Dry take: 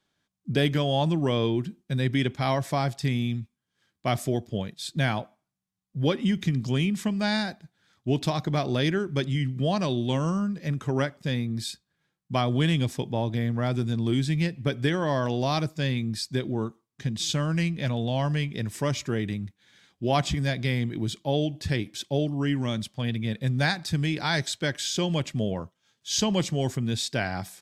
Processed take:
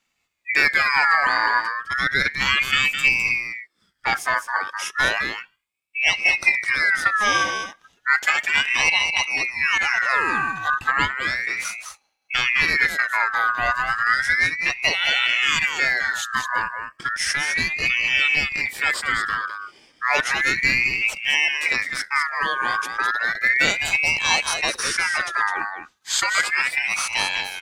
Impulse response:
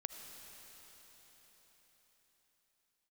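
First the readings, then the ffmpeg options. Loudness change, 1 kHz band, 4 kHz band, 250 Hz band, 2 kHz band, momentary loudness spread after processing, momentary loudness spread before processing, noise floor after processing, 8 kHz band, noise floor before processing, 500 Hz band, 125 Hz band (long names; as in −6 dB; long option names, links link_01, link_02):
+7.5 dB, +9.5 dB, +8.0 dB, −13.5 dB, +18.0 dB, 8 LU, 7 LU, −70 dBFS, +8.0 dB, −80 dBFS, −7.0 dB, −17.0 dB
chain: -af "afftfilt=real='re*pow(10,10/40*sin(2*PI*(0.95*log(max(b,1)*sr/1024/100)/log(2)-(0.39)*(pts-256)/sr)))':imag='im*pow(10,10/40*sin(2*PI*(0.95*log(max(b,1)*sr/1024/100)/log(2)-(0.39)*(pts-256)/sr)))':win_size=1024:overlap=0.75,aecho=1:1:208:0.447,aeval=exprs='val(0)*sin(2*PI*1900*n/s+1900*0.3/0.33*sin(2*PI*0.33*n/s))':channel_layout=same,volume=6dB"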